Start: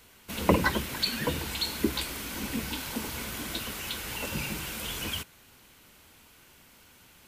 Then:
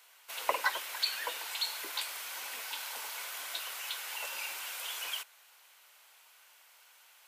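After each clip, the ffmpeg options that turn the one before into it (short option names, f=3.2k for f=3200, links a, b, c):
-af "highpass=f=650:w=0.5412,highpass=f=650:w=1.3066,volume=-3dB"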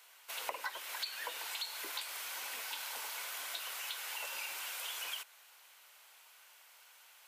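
-af "acompressor=threshold=-38dB:ratio=4"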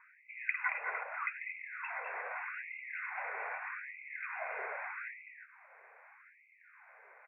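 -af "aecho=1:1:199|225:0.376|0.447,lowpass=f=2.6k:t=q:w=0.5098,lowpass=f=2.6k:t=q:w=0.6013,lowpass=f=2.6k:t=q:w=0.9,lowpass=f=2.6k:t=q:w=2.563,afreqshift=-3000,afftfilt=real='re*gte(b*sr/1024,380*pow(2000/380,0.5+0.5*sin(2*PI*0.81*pts/sr)))':imag='im*gte(b*sr/1024,380*pow(2000/380,0.5+0.5*sin(2*PI*0.81*pts/sr)))':win_size=1024:overlap=0.75,volume=6dB"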